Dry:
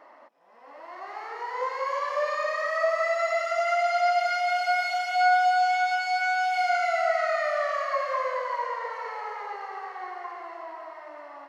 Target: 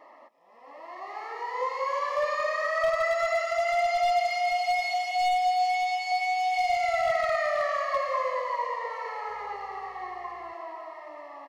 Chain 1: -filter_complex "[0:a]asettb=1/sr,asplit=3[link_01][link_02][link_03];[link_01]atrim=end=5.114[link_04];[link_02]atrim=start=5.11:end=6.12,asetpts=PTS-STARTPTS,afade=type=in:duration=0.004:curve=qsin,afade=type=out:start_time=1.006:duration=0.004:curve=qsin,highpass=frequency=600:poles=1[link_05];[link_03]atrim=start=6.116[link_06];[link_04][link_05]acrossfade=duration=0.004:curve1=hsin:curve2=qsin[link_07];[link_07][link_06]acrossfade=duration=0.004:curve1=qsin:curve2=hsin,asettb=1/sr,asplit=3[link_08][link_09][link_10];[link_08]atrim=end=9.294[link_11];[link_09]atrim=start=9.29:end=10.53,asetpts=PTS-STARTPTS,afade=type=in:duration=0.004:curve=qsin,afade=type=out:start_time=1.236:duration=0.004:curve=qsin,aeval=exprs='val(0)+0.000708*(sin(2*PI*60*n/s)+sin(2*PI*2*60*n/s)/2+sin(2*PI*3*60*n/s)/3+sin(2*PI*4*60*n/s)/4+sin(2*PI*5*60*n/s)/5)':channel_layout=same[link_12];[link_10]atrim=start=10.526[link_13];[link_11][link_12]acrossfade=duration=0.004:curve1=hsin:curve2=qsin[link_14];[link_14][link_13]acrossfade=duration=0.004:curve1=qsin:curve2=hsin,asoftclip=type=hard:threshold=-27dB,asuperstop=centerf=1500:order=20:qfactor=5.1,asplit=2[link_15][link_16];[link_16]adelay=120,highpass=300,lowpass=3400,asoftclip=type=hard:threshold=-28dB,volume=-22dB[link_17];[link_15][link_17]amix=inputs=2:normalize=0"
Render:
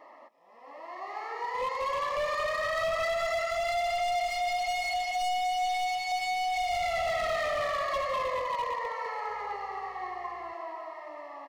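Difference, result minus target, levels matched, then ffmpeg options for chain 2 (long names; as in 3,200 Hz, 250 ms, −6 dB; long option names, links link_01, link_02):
hard clipping: distortion +12 dB
-filter_complex "[0:a]asettb=1/sr,asplit=3[link_01][link_02][link_03];[link_01]atrim=end=5.114[link_04];[link_02]atrim=start=5.11:end=6.12,asetpts=PTS-STARTPTS,afade=type=in:duration=0.004:curve=qsin,afade=type=out:start_time=1.006:duration=0.004:curve=qsin,highpass=frequency=600:poles=1[link_05];[link_03]atrim=start=6.116[link_06];[link_04][link_05]acrossfade=duration=0.004:curve1=hsin:curve2=qsin[link_07];[link_07][link_06]acrossfade=duration=0.004:curve1=qsin:curve2=hsin,asettb=1/sr,asplit=3[link_08][link_09][link_10];[link_08]atrim=end=9.294[link_11];[link_09]atrim=start=9.29:end=10.53,asetpts=PTS-STARTPTS,afade=type=in:duration=0.004:curve=qsin,afade=type=out:start_time=1.236:duration=0.004:curve=qsin,aeval=exprs='val(0)+0.000708*(sin(2*PI*60*n/s)+sin(2*PI*2*60*n/s)/2+sin(2*PI*3*60*n/s)/3+sin(2*PI*4*60*n/s)/4+sin(2*PI*5*60*n/s)/5)':channel_layout=same[link_12];[link_10]atrim=start=10.526[link_13];[link_11][link_12]acrossfade=duration=0.004:curve1=hsin:curve2=qsin[link_14];[link_14][link_13]acrossfade=duration=0.004:curve1=qsin:curve2=hsin,asoftclip=type=hard:threshold=-19.5dB,asuperstop=centerf=1500:order=20:qfactor=5.1,asplit=2[link_15][link_16];[link_16]adelay=120,highpass=300,lowpass=3400,asoftclip=type=hard:threshold=-28dB,volume=-22dB[link_17];[link_15][link_17]amix=inputs=2:normalize=0"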